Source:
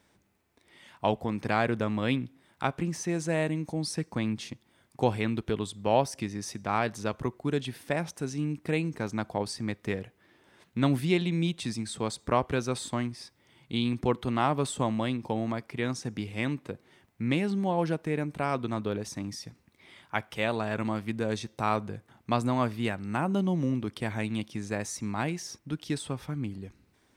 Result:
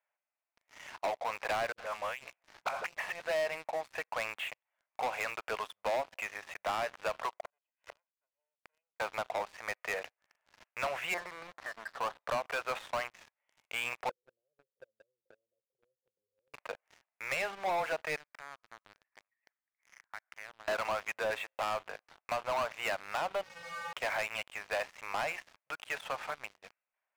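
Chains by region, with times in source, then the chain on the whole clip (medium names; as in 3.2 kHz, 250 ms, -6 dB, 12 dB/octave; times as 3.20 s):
1.72–3.20 s: compressor with a negative ratio -34 dBFS, ratio -0.5 + phase dispersion highs, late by 61 ms, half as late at 400 Hz
7.44–9.00 s: comb filter that takes the minimum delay 2 ms + high-pass 270 Hz + inverted gate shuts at -36 dBFS, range -32 dB
11.14–12.20 s: companding laws mixed up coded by mu + Chebyshev low-pass 1.8 kHz, order 5 + bass shelf 230 Hz -9.5 dB
14.09–16.54 s: compression 3:1, threshold -39 dBFS + rippled Chebyshev low-pass 540 Hz, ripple 6 dB + three bands expanded up and down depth 40%
18.16–20.68 s: compression 8:1, threshold -41 dBFS + four-pole ladder low-pass 2.1 kHz, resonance 55% + peaking EQ 380 Hz -8.5 dB 1.7 oct
23.43–23.93 s: one-bit comparator + feedback comb 170 Hz, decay 0.49 s, harmonics odd, mix 100%
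whole clip: elliptic band-pass 600–2700 Hz, stop band 40 dB; compression 16:1, threshold -32 dBFS; waveshaping leveller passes 5; trim -7.5 dB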